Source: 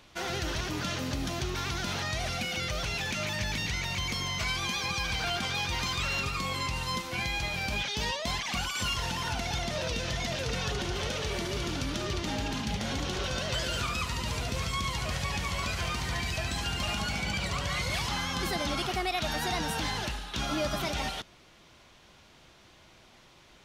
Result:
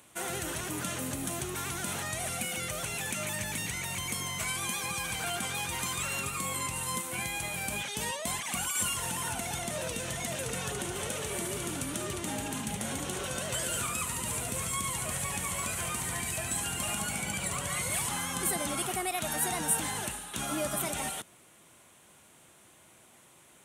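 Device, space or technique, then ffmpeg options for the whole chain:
budget condenser microphone: -af "highpass=110,highshelf=frequency=6700:width_type=q:width=3:gain=11.5,volume=-2dB"

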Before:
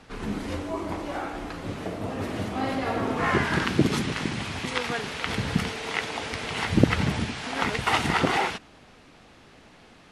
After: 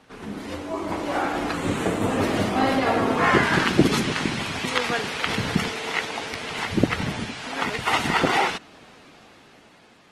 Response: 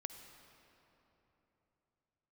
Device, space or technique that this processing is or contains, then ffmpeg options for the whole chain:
video call: -filter_complex "[0:a]asettb=1/sr,asplit=3[link_01][link_02][link_03];[link_01]atrim=end=1.544[link_04];[link_02]atrim=start=1.54:end=2.18,asetpts=PTS-STARTPTS,afade=type=in:duration=0.004:curve=qsin,afade=type=out:start_time=0.636:duration=0.004:curve=qsin,equalizer=frequency=630:width_type=o:width=0.33:gain=-6,equalizer=frequency=5000:width_type=o:width=0.33:gain=-7,equalizer=frequency=8000:width_type=o:width=0.33:gain=8[link_05];[link_03]atrim=start=2.176[link_06];[link_04][link_05]acrossfade=duration=0.004:curve1=hsin:curve2=qsin[link_07];[link_07][link_06]acrossfade=duration=0.004:curve1=qsin:curve2=hsin,highpass=frequency=160:poles=1,dynaudnorm=framelen=340:gausssize=7:maxgain=13.5dB,volume=-1dB" -ar 48000 -c:a libopus -b:a 20k

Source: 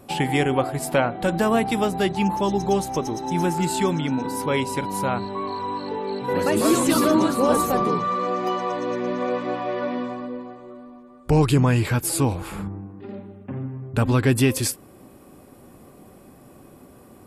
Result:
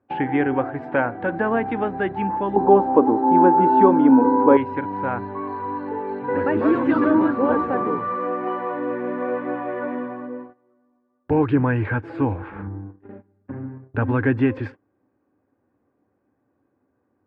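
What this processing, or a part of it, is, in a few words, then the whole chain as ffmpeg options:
bass cabinet: -filter_complex "[0:a]highpass=frequency=61:width=0.5412,highpass=frequency=61:width=1.3066,equalizer=frequency=100:width_type=q:width=4:gain=7,equalizer=frequency=160:width_type=q:width=4:gain=-6,equalizer=frequency=290:width_type=q:width=4:gain=9,equalizer=frequency=480:width_type=q:width=4:gain=5,equalizer=frequency=890:width_type=q:width=4:gain=6,equalizer=frequency=1600:width_type=q:width=4:gain=10,lowpass=frequency=2300:width=0.5412,lowpass=frequency=2300:width=1.3066,agate=range=-21dB:threshold=-31dB:ratio=16:detection=peak,asettb=1/sr,asplit=3[link_01][link_02][link_03];[link_01]atrim=end=2.564[link_04];[link_02]atrim=start=2.56:end=4.57,asetpts=PTS-STARTPTS,afade=type=in:duration=0.004:curve=qsin,afade=type=out:start_time=2.006:duration=0.004:curve=qsin,equalizer=frequency=125:width_type=o:width=1:gain=-6,equalizer=frequency=250:width_type=o:width=1:gain=10,equalizer=frequency=500:width_type=o:width=1:gain=8,equalizer=frequency=1000:width_type=o:width=1:gain=10,equalizer=frequency=2000:width_type=o:width=1:gain=-7,equalizer=frequency=8000:width_type=o:width=1:gain=-5[link_05];[link_03]atrim=start=4.566[link_06];[link_04][link_05]acrossfade=duration=0.004:curve1=hsin:curve2=qsin[link_07];[link_07][link_06]acrossfade=duration=0.004:curve1=qsin:curve2=hsin,volume=-4.5dB"

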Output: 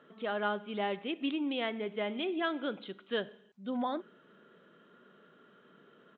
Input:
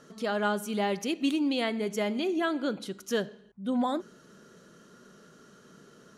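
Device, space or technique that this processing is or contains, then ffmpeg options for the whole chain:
Bluetooth headset: -filter_complex "[0:a]highpass=frequency=270:poles=1,asettb=1/sr,asplit=3[link_01][link_02][link_03];[link_01]atrim=end=2.094[link_04];[link_02]atrim=start=2.09:end=3.64,asetpts=PTS-STARTPTS,afade=type=in:duration=0.004:curve=qsin,afade=type=out:start_time=1.546:duration=0.004:curve=qsin,highshelf=frequency=3700:gain=7.5[link_05];[link_03]atrim=start=3.636[link_06];[link_04][link_05]acrossfade=duration=0.004:curve1=hsin:curve2=qsin[link_07];[link_07][link_06]acrossfade=duration=0.004:curve1=qsin:curve2=hsin,highpass=120,aresample=8000,aresample=44100,volume=-3.5dB" -ar 16000 -c:a sbc -b:a 64k

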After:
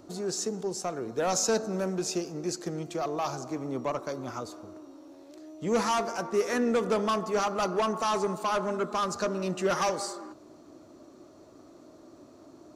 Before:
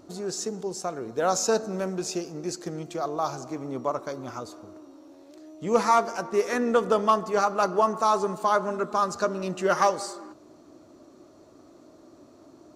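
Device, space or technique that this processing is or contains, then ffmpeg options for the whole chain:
one-band saturation: -filter_complex "[0:a]acrossover=split=330|3100[link_01][link_02][link_03];[link_02]asoftclip=type=tanh:threshold=-24.5dB[link_04];[link_01][link_04][link_03]amix=inputs=3:normalize=0"

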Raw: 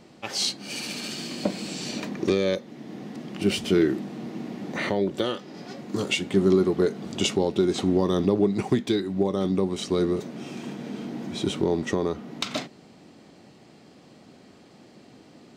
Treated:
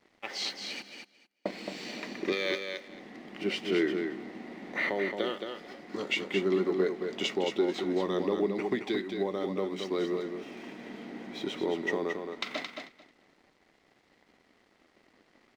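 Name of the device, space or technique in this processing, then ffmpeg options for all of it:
pocket radio on a weak battery: -filter_complex "[0:a]asplit=3[link_01][link_02][link_03];[link_01]afade=type=out:start_time=0.81:duration=0.02[link_04];[link_02]agate=range=-26dB:threshold=-26dB:ratio=16:detection=peak,afade=type=in:start_time=0.81:duration=0.02,afade=type=out:start_time=1.51:duration=0.02[link_05];[link_03]afade=type=in:start_time=1.51:duration=0.02[link_06];[link_04][link_05][link_06]amix=inputs=3:normalize=0,highpass=300,lowpass=4300,aeval=exprs='sgn(val(0))*max(abs(val(0))-0.00188,0)':channel_layout=same,equalizer=frequency=2000:width_type=o:width=0.26:gain=10,asettb=1/sr,asplit=3[link_07][link_08][link_09];[link_07]atrim=end=2.324[link_10];[link_08]atrim=start=2.32:end=2.88,asetpts=PTS-STARTPTS,afade=type=in:duration=0.004:curve=qsin,afade=type=out:start_time=0.556:duration=0.004:curve=qsin,tiltshelf=frequency=970:gain=-7.5[link_11];[link_09]atrim=start=2.876[link_12];[link_10][link_11]acrossfade=duration=0.004:curve1=hsin:curve2=qsin[link_13];[link_13][link_12]acrossfade=duration=0.004:curve1=qsin:curve2=hsin,aecho=1:1:221|442|663:0.501|0.0802|0.0128,volume=-5dB"

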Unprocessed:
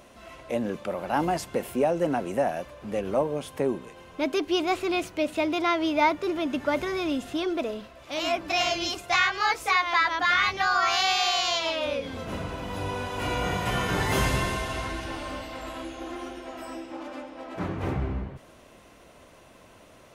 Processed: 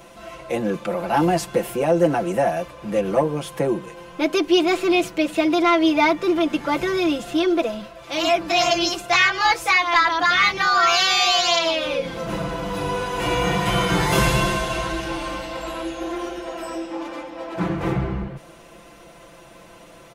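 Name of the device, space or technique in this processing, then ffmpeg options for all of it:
one-band saturation: -filter_complex "[0:a]aecho=1:1:5.9:0.89,acrossover=split=410|2500[link_01][link_02][link_03];[link_02]asoftclip=type=tanh:threshold=-15.5dB[link_04];[link_01][link_04][link_03]amix=inputs=3:normalize=0,volume=4.5dB"

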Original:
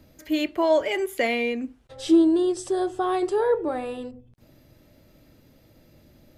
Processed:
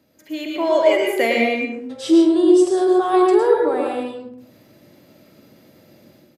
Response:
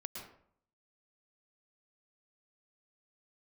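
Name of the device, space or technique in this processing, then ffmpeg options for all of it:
far laptop microphone: -filter_complex "[1:a]atrim=start_sample=2205[link_01];[0:a][link_01]afir=irnorm=-1:irlink=0,highpass=180,dynaudnorm=framelen=440:gausssize=3:maxgain=9.5dB,asplit=2[link_02][link_03];[link_03]adelay=48,volume=-13dB[link_04];[link_02][link_04]amix=inputs=2:normalize=0"

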